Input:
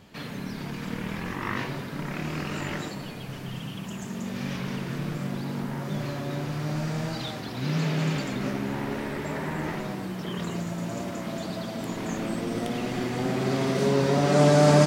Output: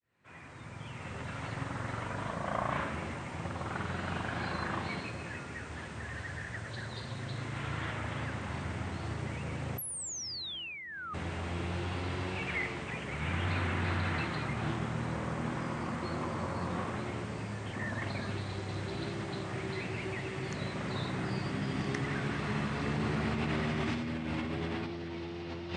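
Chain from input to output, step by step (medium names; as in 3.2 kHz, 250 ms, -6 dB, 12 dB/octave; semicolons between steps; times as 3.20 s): fade-in on the opening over 0.78 s; high-pass 280 Hz 6 dB/octave; speed mistake 78 rpm record played at 45 rpm; dynamic bell 470 Hz, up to -4 dB, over -44 dBFS, Q 3.9; painted sound fall, 9.78–11.14 s, 1.2–12 kHz -21 dBFS; peaking EQ 2 kHz +5.5 dB 0.72 oct; compressor with a negative ratio -29 dBFS, ratio -1; trim -5 dB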